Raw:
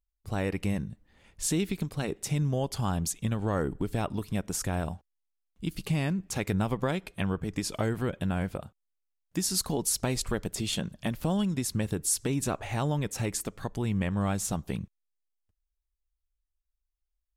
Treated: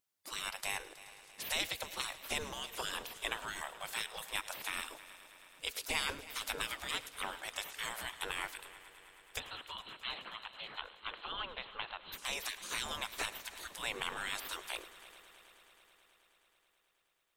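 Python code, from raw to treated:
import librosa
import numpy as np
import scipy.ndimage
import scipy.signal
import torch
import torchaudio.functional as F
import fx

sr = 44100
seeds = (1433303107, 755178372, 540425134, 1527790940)

y = fx.spec_gate(x, sr, threshold_db=-25, keep='weak')
y = fx.cheby_ripple(y, sr, hz=4200.0, ripple_db=6, at=(9.38, 12.12), fade=0.02)
y = fx.echo_heads(y, sr, ms=107, heads='first and third', feedback_pct=74, wet_db=-18.5)
y = F.gain(torch.from_numpy(y), 8.5).numpy()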